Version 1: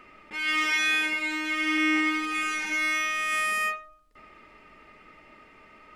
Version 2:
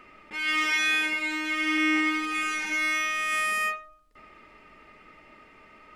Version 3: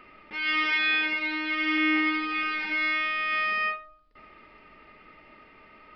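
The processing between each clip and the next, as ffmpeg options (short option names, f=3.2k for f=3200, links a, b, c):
-af anull
-af "aresample=11025,aresample=44100"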